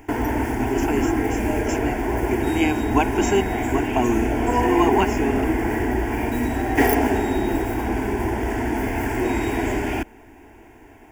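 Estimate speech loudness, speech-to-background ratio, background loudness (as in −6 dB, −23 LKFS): −25.5 LKFS, −2.5 dB, −23.0 LKFS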